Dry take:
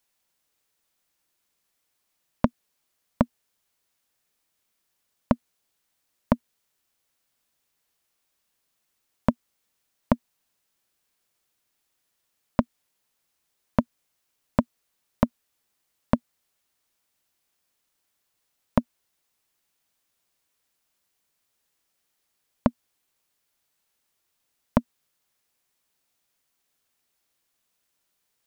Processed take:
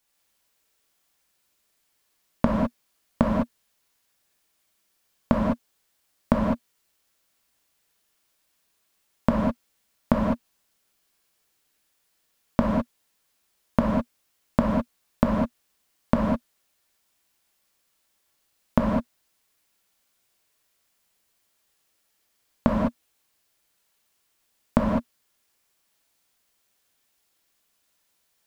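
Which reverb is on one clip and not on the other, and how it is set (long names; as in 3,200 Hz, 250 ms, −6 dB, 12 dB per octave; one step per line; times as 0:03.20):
reverb whose tail is shaped and stops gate 230 ms flat, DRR −3 dB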